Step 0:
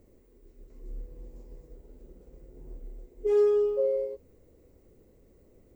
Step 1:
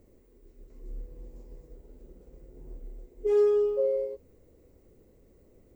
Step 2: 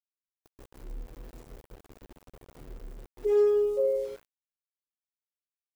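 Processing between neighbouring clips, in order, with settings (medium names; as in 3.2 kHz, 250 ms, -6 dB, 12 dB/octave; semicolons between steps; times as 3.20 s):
no audible change
spring tank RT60 1.6 s, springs 37/43 ms, chirp 60 ms, DRR 17 dB; small samples zeroed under -45.5 dBFS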